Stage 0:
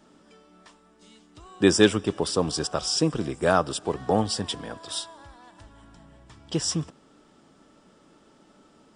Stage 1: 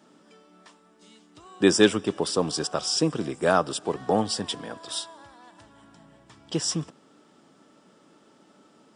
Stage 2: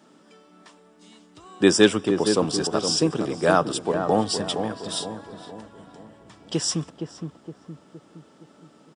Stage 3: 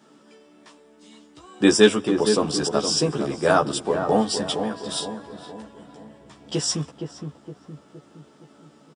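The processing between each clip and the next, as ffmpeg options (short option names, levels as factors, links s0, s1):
-af "highpass=140"
-filter_complex "[0:a]asplit=2[s0][s1];[s1]adelay=466,lowpass=f=950:p=1,volume=0.501,asplit=2[s2][s3];[s3]adelay=466,lowpass=f=950:p=1,volume=0.51,asplit=2[s4][s5];[s5]adelay=466,lowpass=f=950:p=1,volume=0.51,asplit=2[s6][s7];[s7]adelay=466,lowpass=f=950:p=1,volume=0.51,asplit=2[s8][s9];[s9]adelay=466,lowpass=f=950:p=1,volume=0.51,asplit=2[s10][s11];[s11]adelay=466,lowpass=f=950:p=1,volume=0.51[s12];[s0][s2][s4][s6][s8][s10][s12]amix=inputs=7:normalize=0,volume=1.26"
-filter_complex "[0:a]asplit=2[s0][s1];[s1]adelay=14,volume=0.75[s2];[s0][s2]amix=inputs=2:normalize=0,volume=0.891"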